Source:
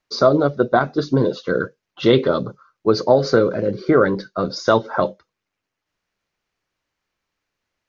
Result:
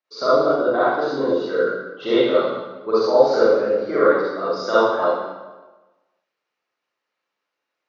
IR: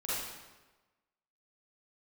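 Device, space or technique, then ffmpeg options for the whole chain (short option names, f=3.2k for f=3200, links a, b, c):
supermarket ceiling speaker: -filter_complex "[0:a]highpass=320,lowpass=5.3k[a];[1:a]atrim=start_sample=2205[b];[a][b]afir=irnorm=-1:irlink=0,volume=-5dB"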